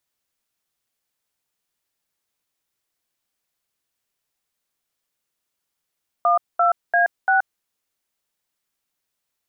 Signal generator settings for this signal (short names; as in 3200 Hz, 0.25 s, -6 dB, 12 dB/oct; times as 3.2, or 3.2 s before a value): DTMF "12A6", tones 0.126 s, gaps 0.217 s, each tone -16.5 dBFS